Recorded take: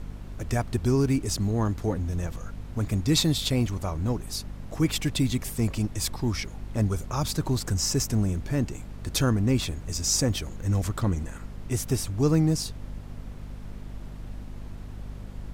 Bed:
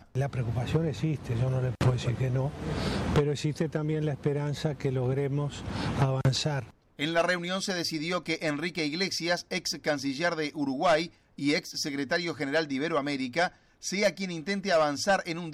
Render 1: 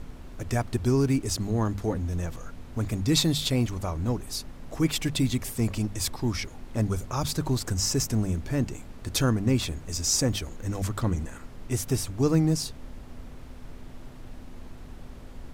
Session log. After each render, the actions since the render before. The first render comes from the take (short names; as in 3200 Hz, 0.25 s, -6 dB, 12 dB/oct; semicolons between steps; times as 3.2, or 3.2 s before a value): notches 50/100/150/200 Hz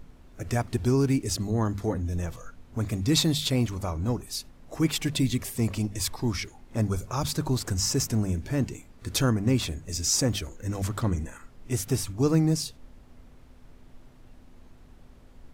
noise print and reduce 9 dB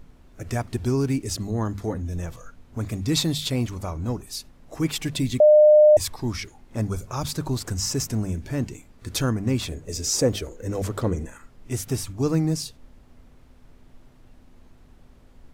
5.4–5.97 bleep 605 Hz -9.5 dBFS; 9.71–11.26 bell 460 Hz +11 dB 0.84 oct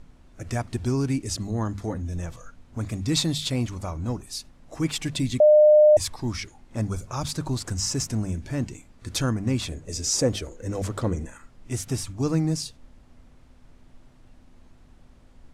Chebyshev low-pass 9300 Hz, order 2; bell 420 Hz -4 dB 0.3 oct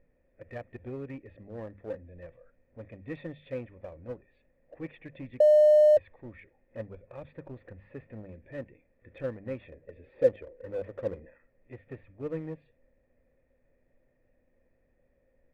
vocal tract filter e; in parallel at -3 dB: crossover distortion -42 dBFS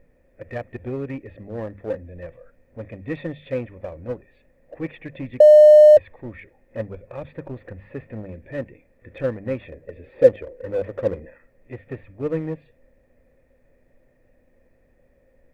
gain +10 dB